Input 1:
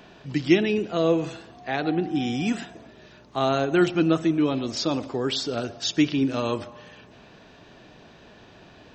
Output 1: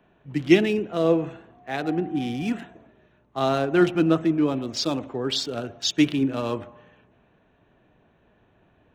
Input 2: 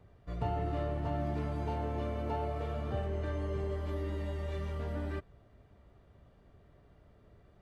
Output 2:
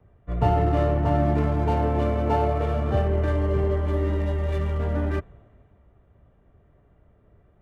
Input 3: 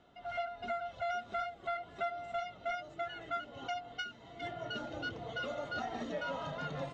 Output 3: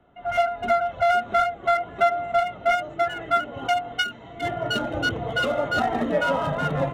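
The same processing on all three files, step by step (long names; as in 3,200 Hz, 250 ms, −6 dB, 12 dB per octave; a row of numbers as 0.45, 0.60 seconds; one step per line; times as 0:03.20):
adaptive Wiener filter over 9 samples
multiband upward and downward expander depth 40%
loudness normalisation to −24 LKFS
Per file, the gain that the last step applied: 0.0, +12.5, +16.5 decibels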